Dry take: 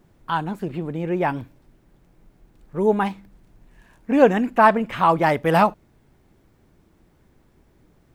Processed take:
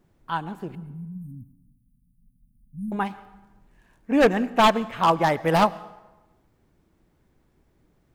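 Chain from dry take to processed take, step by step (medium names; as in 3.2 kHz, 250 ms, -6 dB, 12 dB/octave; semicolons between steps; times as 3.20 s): wavefolder -9.5 dBFS; 0.75–2.92 s: brick-wall FIR band-stop 270–8600 Hz; plate-style reverb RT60 1.1 s, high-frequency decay 0.7×, pre-delay 85 ms, DRR 15 dB; upward expansion 1.5:1, over -26 dBFS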